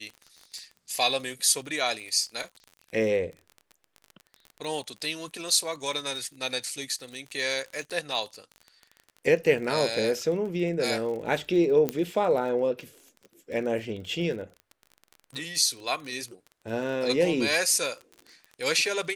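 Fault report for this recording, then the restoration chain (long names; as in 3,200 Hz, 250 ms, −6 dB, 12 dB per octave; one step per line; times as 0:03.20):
surface crackle 29 per second −35 dBFS
0:11.89: click −12 dBFS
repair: click removal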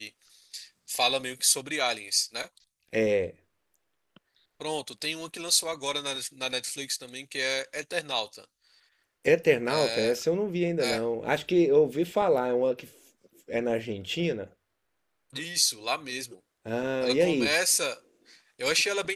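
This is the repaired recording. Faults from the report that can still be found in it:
none of them is left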